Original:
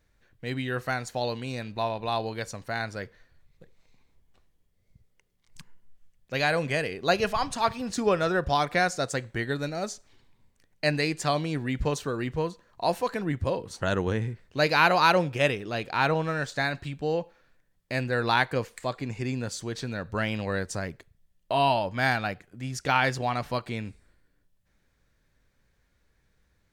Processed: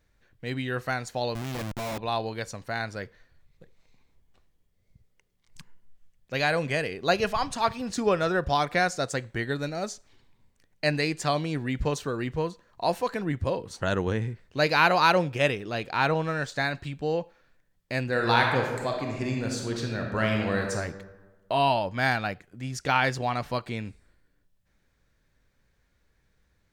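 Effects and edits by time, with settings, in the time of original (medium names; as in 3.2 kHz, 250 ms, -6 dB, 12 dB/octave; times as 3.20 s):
1.35–1.98 s: Schmitt trigger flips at -38 dBFS
18.05–20.73 s: reverb throw, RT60 1.3 s, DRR 1 dB
whole clip: peaking EQ 11 kHz -2 dB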